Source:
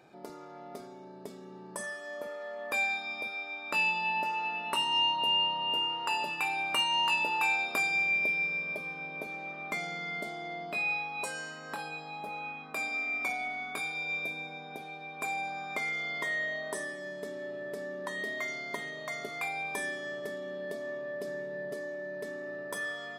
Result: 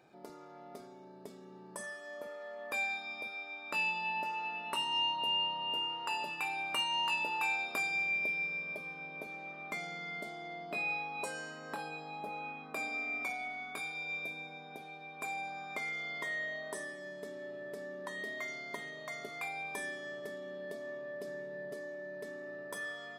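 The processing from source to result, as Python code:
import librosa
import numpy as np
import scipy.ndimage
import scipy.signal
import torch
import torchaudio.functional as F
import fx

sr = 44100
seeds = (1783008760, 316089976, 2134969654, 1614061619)

y = fx.peak_eq(x, sr, hz=360.0, db=5.5, octaves=2.6, at=(10.71, 13.24))
y = y * 10.0 ** (-5.0 / 20.0)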